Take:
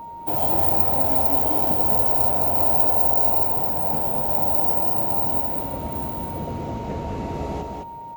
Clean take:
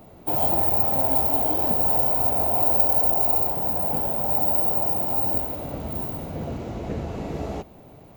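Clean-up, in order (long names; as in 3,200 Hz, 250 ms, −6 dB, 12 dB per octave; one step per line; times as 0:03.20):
notch filter 930 Hz, Q 30
echo removal 211 ms −3.5 dB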